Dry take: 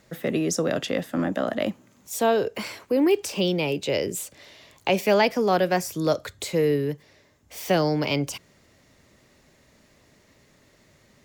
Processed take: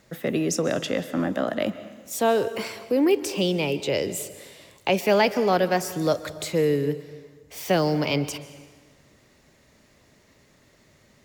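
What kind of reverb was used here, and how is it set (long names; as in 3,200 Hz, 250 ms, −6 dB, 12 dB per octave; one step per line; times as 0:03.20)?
dense smooth reverb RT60 1.5 s, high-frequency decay 0.85×, pre-delay 115 ms, DRR 14 dB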